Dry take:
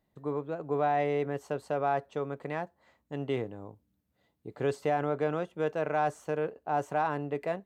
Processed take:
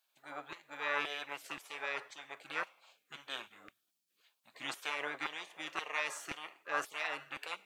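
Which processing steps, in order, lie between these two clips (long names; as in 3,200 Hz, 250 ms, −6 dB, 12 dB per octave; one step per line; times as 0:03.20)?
coupled-rooms reverb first 0.52 s, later 2.2 s, from −26 dB, DRR 13 dB
auto-filter high-pass saw down 1.9 Hz 870–2,300 Hz
gate on every frequency bin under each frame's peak −15 dB weak
level +8 dB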